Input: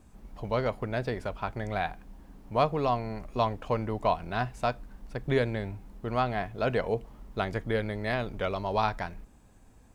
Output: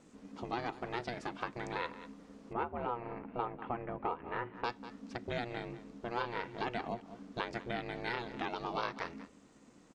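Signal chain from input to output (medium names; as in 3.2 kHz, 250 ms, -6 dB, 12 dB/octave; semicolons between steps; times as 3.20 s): low-pass 7.5 kHz 24 dB/octave, from 2.53 s 2.2 kHz, from 4.64 s 6.9 kHz; delay 194 ms -19.5 dB; compression 2.5:1, threshold -34 dBFS, peak gain reduction 10 dB; ring modulator 240 Hz; tilt EQ +2 dB/octave; trim +1.5 dB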